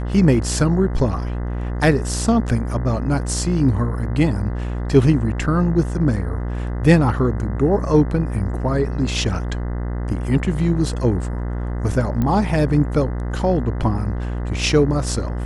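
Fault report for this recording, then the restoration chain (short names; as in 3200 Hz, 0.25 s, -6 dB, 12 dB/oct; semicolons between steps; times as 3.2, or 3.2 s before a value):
buzz 60 Hz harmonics 34 -24 dBFS
12.22 pop -11 dBFS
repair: de-click; de-hum 60 Hz, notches 34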